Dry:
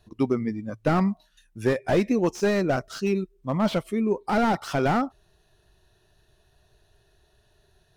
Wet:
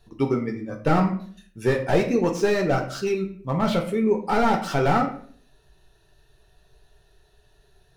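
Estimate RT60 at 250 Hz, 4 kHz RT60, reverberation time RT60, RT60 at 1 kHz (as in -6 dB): 0.60 s, 0.35 s, 0.50 s, 0.45 s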